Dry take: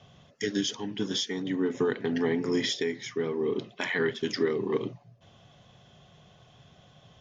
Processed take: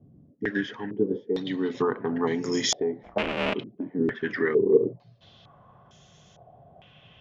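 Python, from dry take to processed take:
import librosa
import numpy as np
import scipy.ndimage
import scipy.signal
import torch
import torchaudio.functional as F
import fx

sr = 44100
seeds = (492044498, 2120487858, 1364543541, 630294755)

y = fx.cycle_switch(x, sr, every=2, mode='inverted', at=(3.02, 3.53), fade=0.02)
y = fx.filter_held_lowpass(y, sr, hz=2.2, low_hz=290.0, high_hz=6600.0)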